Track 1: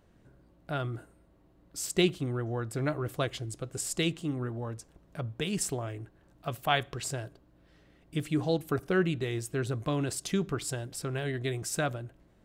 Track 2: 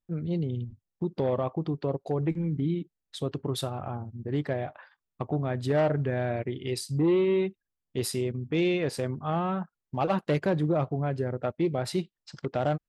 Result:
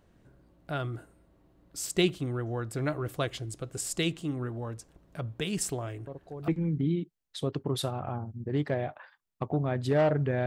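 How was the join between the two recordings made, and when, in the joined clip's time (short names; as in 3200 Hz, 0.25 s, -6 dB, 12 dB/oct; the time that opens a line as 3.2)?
track 1
6.07 add track 2 from 1.86 s 0.41 s -12.5 dB
6.48 switch to track 2 from 2.27 s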